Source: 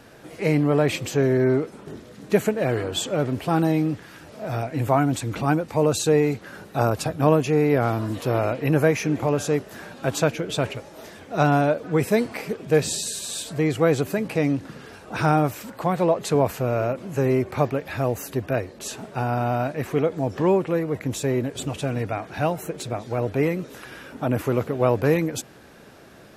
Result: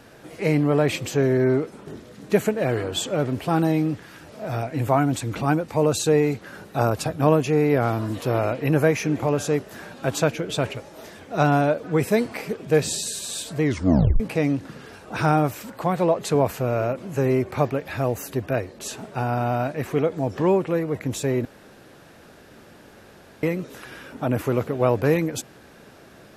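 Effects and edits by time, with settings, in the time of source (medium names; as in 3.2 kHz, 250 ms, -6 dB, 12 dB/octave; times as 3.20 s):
13.63 s: tape stop 0.57 s
21.45–23.43 s: room tone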